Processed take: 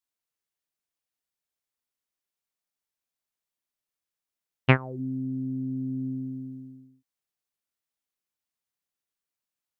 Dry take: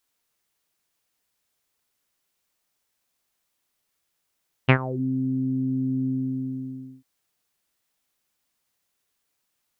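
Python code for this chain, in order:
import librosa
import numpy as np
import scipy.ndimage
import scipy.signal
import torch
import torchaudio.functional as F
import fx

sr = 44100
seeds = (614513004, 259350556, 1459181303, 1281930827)

y = fx.upward_expand(x, sr, threshold_db=-42.0, expansion=1.5)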